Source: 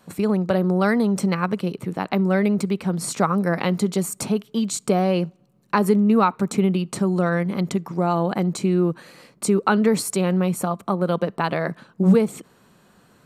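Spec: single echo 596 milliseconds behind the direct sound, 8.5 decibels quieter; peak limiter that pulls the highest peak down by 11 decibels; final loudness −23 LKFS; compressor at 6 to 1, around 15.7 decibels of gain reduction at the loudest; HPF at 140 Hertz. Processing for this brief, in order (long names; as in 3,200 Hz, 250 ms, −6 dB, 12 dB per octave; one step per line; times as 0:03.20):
high-pass filter 140 Hz
downward compressor 6 to 1, threshold −30 dBFS
brickwall limiter −25 dBFS
single-tap delay 596 ms −8.5 dB
level +12 dB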